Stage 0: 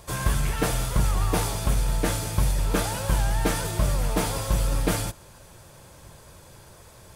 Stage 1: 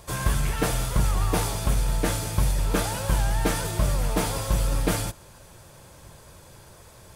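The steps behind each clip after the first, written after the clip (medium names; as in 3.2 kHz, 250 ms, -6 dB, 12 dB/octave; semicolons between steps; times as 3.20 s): no audible change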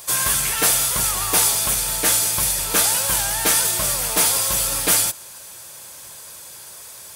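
tilt EQ +4 dB/octave; trim +4 dB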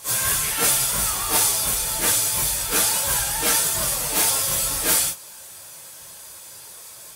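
phase randomisation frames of 100 ms; trim -2 dB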